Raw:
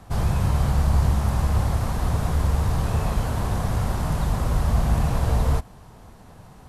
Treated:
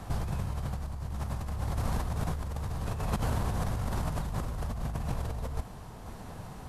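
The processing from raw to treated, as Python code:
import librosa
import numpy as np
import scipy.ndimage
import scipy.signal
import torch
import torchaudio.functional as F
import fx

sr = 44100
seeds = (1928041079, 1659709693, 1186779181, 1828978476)

y = fx.over_compress(x, sr, threshold_db=-28.0, ratio=-1.0)
y = fx.tremolo_shape(y, sr, shape='saw_down', hz=0.66, depth_pct=30)
y = y * 10.0 ** (-3.0 / 20.0)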